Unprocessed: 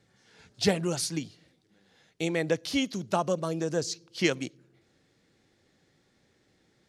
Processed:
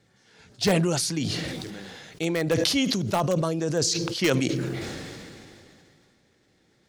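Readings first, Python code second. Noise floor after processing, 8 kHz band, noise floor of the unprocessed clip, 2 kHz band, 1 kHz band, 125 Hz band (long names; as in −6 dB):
−65 dBFS, +7.0 dB, −69 dBFS, +3.5 dB, +3.5 dB, +8.0 dB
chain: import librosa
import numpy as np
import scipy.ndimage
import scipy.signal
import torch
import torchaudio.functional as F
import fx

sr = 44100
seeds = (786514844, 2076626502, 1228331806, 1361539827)

p1 = (np.mod(10.0 ** (16.5 / 20.0) * x + 1.0, 2.0) - 1.0) / 10.0 ** (16.5 / 20.0)
p2 = x + F.gain(torch.from_numpy(p1), -10.0).numpy()
y = fx.sustainer(p2, sr, db_per_s=23.0)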